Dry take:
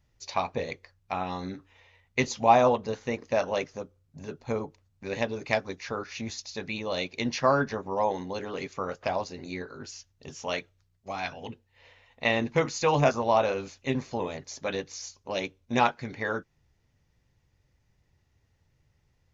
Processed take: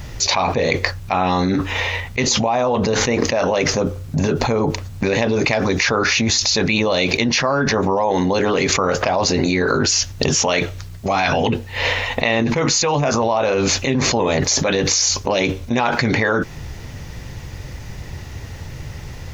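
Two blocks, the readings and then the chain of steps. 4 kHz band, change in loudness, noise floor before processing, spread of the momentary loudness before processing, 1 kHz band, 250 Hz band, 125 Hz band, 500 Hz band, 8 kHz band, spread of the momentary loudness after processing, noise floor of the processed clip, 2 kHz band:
+18.0 dB, +11.5 dB, -71 dBFS, 16 LU, +7.5 dB, +14.0 dB, +14.5 dB, +10.0 dB, n/a, 17 LU, -34 dBFS, +13.5 dB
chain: fast leveller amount 100%; gain -3 dB

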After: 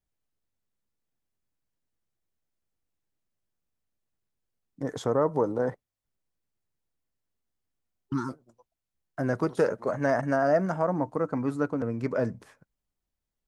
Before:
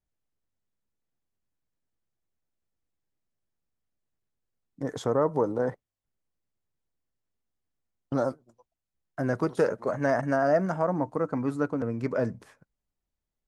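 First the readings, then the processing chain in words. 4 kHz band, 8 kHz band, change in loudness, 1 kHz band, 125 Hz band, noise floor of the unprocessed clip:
0.0 dB, n/a, 0.0 dB, 0.0 dB, 0.0 dB, under -85 dBFS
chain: spectral repair 7.92–8.27, 390–860 Hz before

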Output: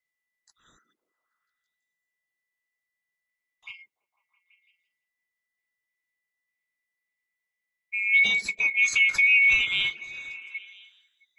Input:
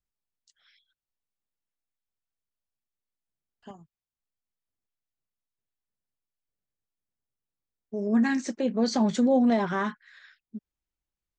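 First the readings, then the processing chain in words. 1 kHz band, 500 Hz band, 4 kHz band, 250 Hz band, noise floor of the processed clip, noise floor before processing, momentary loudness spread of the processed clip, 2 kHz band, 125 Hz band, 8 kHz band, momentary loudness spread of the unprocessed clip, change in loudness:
under -15 dB, under -25 dB, +12.0 dB, under -25 dB, under -85 dBFS, under -85 dBFS, 20 LU, +18.0 dB, under -10 dB, +5.5 dB, 11 LU, +5.5 dB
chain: band-swap scrambler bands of 2000 Hz; on a send: delay with a stepping band-pass 0.166 s, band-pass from 290 Hz, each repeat 0.7 oct, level -8.5 dB; on the sum: gain +2 dB

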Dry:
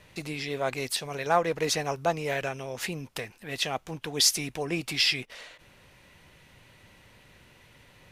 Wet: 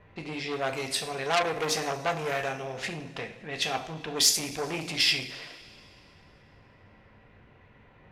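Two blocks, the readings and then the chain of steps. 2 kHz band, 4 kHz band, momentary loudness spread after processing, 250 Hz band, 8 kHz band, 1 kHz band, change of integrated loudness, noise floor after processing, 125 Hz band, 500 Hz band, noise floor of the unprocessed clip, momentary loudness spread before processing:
+0.5 dB, +0.5 dB, 16 LU, -2.0 dB, +0.5 dB, -0.5 dB, 0.0 dB, -57 dBFS, -2.5 dB, -1.5 dB, -57 dBFS, 14 LU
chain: low-pass opened by the level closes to 1500 Hz, open at -26 dBFS; two-slope reverb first 0.49 s, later 2.7 s, from -18 dB, DRR 3 dB; core saturation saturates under 3700 Hz

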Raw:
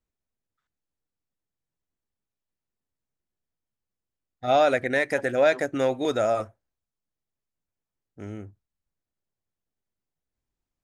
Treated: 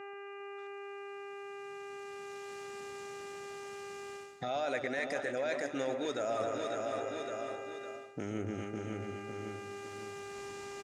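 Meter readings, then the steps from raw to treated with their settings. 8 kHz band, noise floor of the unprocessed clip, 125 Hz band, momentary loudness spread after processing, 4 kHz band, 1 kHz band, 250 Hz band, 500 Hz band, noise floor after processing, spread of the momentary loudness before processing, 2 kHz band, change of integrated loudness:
-2.0 dB, under -85 dBFS, -5.0 dB, 10 LU, -6.5 dB, -9.5 dB, -6.5 dB, -9.5 dB, -46 dBFS, 19 LU, -9.0 dB, -15.5 dB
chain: recorder AGC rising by 12 dB/s; limiter -18.5 dBFS, peak gain reduction 10.5 dB; synth low-pass 6900 Hz, resonance Q 1.7; high shelf 3900 Hz +10.5 dB; on a send: feedback echo 0.556 s, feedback 39%, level -13.5 dB; on the sum: buzz 400 Hz, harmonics 7, -52 dBFS -5 dB/oct; echo with dull and thin repeats by turns 0.134 s, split 1200 Hz, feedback 72%, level -9 dB; reverse; compressor 6:1, threshold -39 dBFS, peak gain reduction 16.5 dB; reverse; HPF 120 Hz 12 dB/oct; tone controls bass -3 dB, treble -8 dB; gain +6.5 dB

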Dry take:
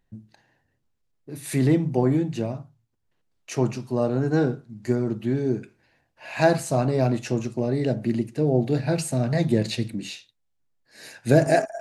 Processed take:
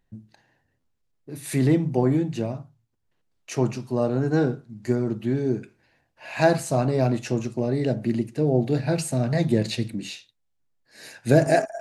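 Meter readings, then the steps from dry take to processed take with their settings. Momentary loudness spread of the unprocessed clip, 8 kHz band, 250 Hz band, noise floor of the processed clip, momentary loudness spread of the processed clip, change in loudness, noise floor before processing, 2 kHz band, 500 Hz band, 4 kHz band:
12 LU, 0.0 dB, 0.0 dB, -73 dBFS, 12 LU, 0.0 dB, -73 dBFS, 0.0 dB, 0.0 dB, 0.0 dB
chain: stuck buffer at 0.8, samples 512, times 2

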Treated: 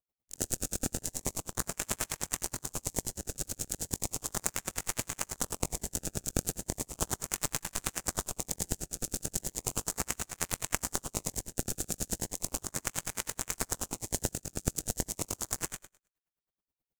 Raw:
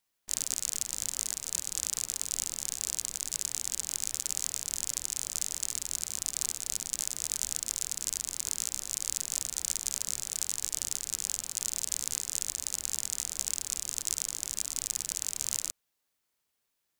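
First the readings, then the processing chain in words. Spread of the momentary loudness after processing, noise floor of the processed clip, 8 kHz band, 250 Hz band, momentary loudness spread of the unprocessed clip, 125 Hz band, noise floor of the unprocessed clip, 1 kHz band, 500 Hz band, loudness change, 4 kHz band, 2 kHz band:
3 LU, under -85 dBFS, -4.5 dB, +15.0 dB, 2 LU, +14.5 dB, -81 dBFS, +11.0 dB, +14.0 dB, -3.0 dB, -5.0 dB, +5.5 dB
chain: chorus 1 Hz, delay 17.5 ms, depth 5.2 ms; gate -39 dBFS, range -16 dB; high shelf 9900 Hz +12 dB; flutter echo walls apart 3.9 m, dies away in 0.24 s; in parallel at -4 dB: decimation with a swept rate 24×, swing 160% 0.36 Hz; on the sum: low shelf 240 Hz +8 dB; on a send: flutter echo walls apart 10.6 m, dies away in 0.45 s; on the sum: dB-linear tremolo 9.4 Hz, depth 36 dB

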